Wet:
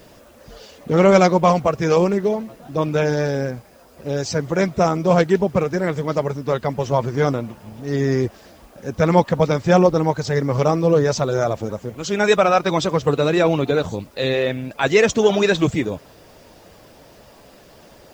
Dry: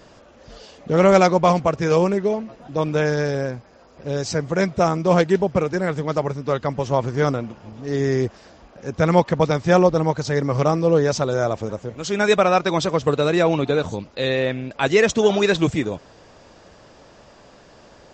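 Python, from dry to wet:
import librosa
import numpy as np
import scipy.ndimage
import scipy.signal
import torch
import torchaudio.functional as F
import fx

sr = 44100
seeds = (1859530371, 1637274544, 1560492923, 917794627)

y = fx.spec_quant(x, sr, step_db=15)
y = fx.quant_dither(y, sr, seeds[0], bits=10, dither='triangular')
y = y * librosa.db_to_amplitude(1.5)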